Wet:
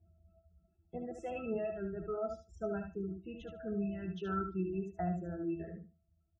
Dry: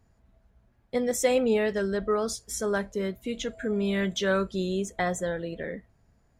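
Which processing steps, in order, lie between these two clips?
reverb removal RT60 1.6 s; pitch-class resonator E, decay 0.16 s; spectral gate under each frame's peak -30 dB strong; on a send: feedback delay 74 ms, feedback 15%, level -6 dB; on the sum: trim +6 dB

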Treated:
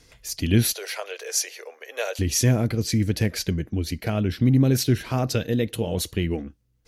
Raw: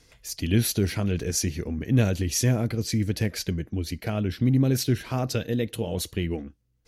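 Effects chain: 0.73–2.19 s: steep high-pass 480 Hz 48 dB/octave; trim +3 dB

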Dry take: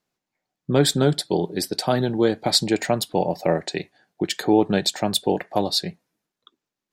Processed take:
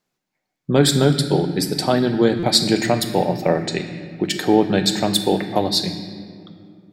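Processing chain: on a send at -4 dB: high-order bell 670 Hz -10 dB + reverberation RT60 2.4 s, pre-delay 4 ms; on the sum: buffer glitch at 2.39 s, samples 256, times 6; trim +2.5 dB

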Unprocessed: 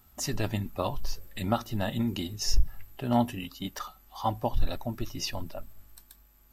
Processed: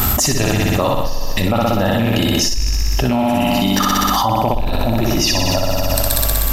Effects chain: rattle on loud lows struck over -27 dBFS, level -29 dBFS; 1.03–2.13 s: graphic EQ with 31 bands 500 Hz +12 dB, 1.6 kHz +3 dB, 8 kHz -5 dB; flutter echo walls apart 10.6 m, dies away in 1.4 s; loudness maximiser +16.5 dB; level flattener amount 100%; trim -10.5 dB

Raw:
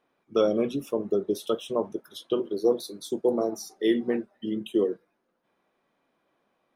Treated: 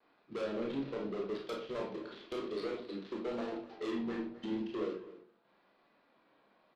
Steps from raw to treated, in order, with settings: dead-time distortion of 0.14 ms; Chebyshev low-pass 4.3 kHz, order 4; bass shelf 360 Hz -5.5 dB; compression 2.5:1, threshold -37 dBFS, peak gain reduction 11.5 dB; 1.31–3.49 s: treble shelf 2.3 kHz +5.5 dB; saturation -38.5 dBFS, distortion -7 dB; echo from a far wall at 44 m, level -16 dB; reverberation RT60 0.45 s, pre-delay 23 ms, DRR 0 dB; vibrato 0.9 Hz 39 cents; trim +3 dB

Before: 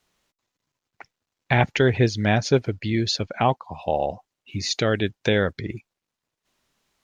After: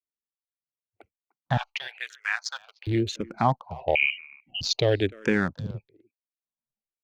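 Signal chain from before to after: local Wiener filter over 25 samples; 1.57–2.87 s: inverse Chebyshev high-pass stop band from 250 Hz, stop band 70 dB; spectral noise reduction 29 dB; level rider gain up to 5.5 dB; speakerphone echo 300 ms, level -22 dB; 3.95–4.61 s: frequency inversion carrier 3 kHz; barber-pole phaser -0.99 Hz; trim -2.5 dB

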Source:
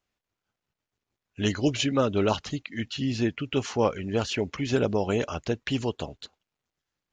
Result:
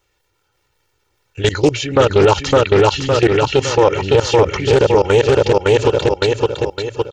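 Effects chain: comb 2.2 ms, depth 98%; level held to a coarse grid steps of 22 dB; feedback delay 560 ms, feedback 41%, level -5.5 dB; loudness maximiser +23 dB; loudspeaker Doppler distortion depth 0.26 ms; trim -1.5 dB

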